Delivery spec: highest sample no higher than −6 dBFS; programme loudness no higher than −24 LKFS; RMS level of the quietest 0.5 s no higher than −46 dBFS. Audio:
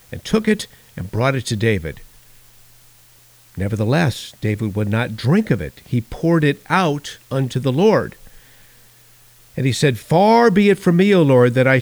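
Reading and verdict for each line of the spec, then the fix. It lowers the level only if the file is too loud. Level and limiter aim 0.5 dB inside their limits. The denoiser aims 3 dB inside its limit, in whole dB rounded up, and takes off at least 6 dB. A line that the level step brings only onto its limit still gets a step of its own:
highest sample −3.0 dBFS: out of spec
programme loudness −17.5 LKFS: out of spec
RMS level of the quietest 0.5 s −49 dBFS: in spec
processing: level −7 dB

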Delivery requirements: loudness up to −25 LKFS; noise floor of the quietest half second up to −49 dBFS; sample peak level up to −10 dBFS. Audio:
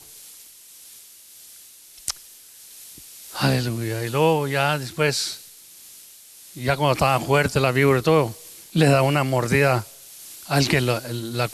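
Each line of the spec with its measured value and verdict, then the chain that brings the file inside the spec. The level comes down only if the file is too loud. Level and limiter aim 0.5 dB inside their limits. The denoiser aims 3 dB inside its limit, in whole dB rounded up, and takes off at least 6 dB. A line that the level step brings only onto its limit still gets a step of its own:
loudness −21.5 LKFS: out of spec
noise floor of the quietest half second −47 dBFS: out of spec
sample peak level −5.5 dBFS: out of spec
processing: level −4 dB
brickwall limiter −10.5 dBFS

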